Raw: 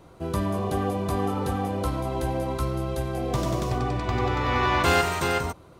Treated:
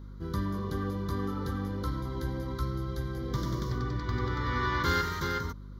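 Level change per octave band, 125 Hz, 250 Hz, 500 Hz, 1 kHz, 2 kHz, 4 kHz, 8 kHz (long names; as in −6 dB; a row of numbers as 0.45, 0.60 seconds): −4.0, −5.5, −10.0, −8.5, −6.0, −7.0, −11.0 decibels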